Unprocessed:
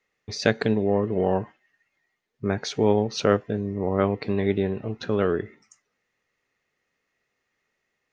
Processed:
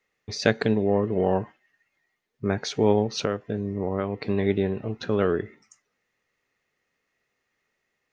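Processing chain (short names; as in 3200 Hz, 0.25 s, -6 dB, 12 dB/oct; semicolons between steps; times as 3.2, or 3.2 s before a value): 3.17–4.29 compressor 6:1, threshold -22 dBFS, peak gain reduction 9 dB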